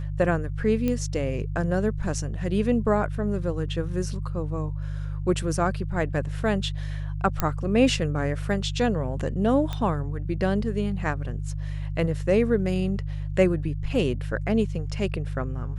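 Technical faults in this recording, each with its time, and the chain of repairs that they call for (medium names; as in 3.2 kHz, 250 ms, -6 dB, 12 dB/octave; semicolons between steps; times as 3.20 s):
hum 50 Hz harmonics 3 -30 dBFS
0.88 s: pop -14 dBFS
7.40 s: pop -8 dBFS
9.73 s: pop -17 dBFS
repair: de-click; de-hum 50 Hz, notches 3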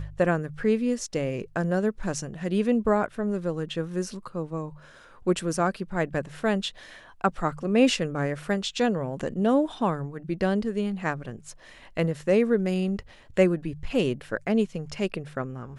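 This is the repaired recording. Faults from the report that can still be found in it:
9.73 s: pop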